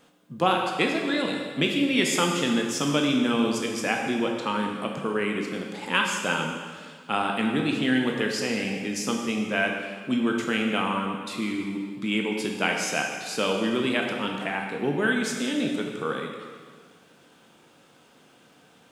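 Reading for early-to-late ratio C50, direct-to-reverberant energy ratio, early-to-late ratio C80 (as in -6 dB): 3.0 dB, 1.0 dB, 4.5 dB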